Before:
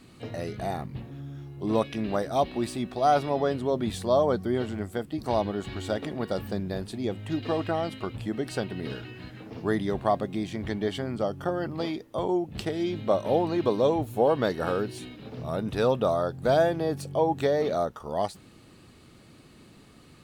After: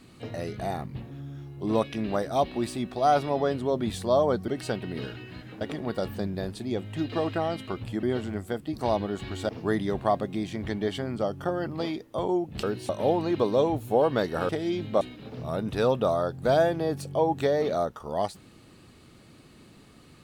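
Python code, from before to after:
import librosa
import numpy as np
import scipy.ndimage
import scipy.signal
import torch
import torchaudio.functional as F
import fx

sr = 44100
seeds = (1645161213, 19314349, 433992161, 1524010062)

y = fx.edit(x, sr, fx.swap(start_s=4.48, length_s=1.46, other_s=8.36, other_length_s=1.13),
    fx.swap(start_s=12.63, length_s=0.52, other_s=14.75, other_length_s=0.26), tone=tone)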